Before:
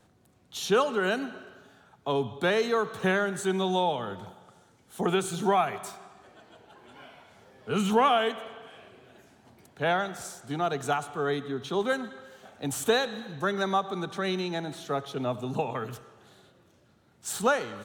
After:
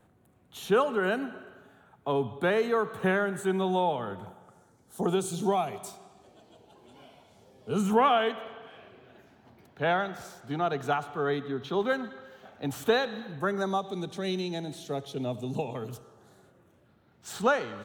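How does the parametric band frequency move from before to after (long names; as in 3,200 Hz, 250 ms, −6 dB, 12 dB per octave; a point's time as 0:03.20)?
parametric band −13 dB 1.2 octaves
0:04.20 5,200 Hz
0:05.36 1,600 Hz
0:07.69 1,600 Hz
0:08.09 8,600 Hz
0:13.23 8,600 Hz
0:13.89 1,300 Hz
0:15.69 1,300 Hz
0:17.34 11,000 Hz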